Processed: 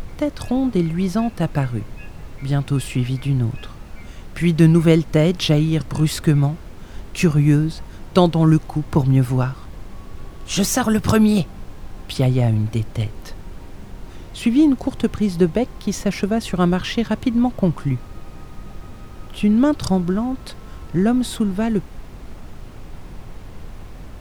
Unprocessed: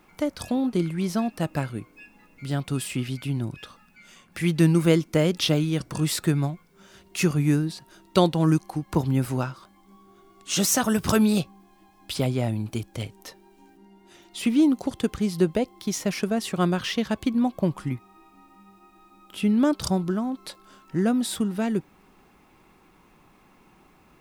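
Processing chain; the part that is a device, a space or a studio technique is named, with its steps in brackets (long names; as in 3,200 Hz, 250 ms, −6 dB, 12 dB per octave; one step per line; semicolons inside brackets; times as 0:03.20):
car interior (parametric band 110 Hz +6.5 dB 0.93 octaves; high-shelf EQ 4,700 Hz −6 dB; brown noise bed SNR 13 dB)
level +4.5 dB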